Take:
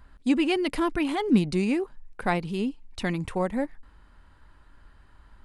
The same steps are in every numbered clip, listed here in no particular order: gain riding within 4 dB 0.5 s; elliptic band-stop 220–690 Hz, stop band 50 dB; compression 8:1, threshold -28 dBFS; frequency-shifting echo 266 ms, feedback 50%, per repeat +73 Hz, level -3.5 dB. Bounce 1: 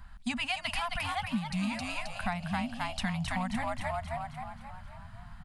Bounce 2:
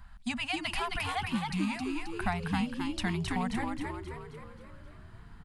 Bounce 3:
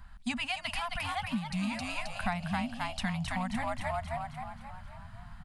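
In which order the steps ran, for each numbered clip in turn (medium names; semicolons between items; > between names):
frequency-shifting echo > elliptic band-stop > gain riding > compression; elliptic band-stop > compression > gain riding > frequency-shifting echo; frequency-shifting echo > elliptic band-stop > compression > gain riding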